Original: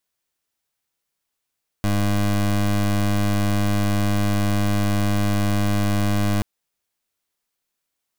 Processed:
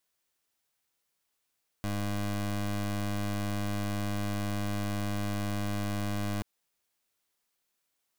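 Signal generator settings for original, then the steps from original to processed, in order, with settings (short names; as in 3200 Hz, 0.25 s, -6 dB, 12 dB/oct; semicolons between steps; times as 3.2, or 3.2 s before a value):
pulse 102 Hz, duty 23% -19.5 dBFS 4.58 s
low shelf 180 Hz -3.5 dB; limiter -27.5 dBFS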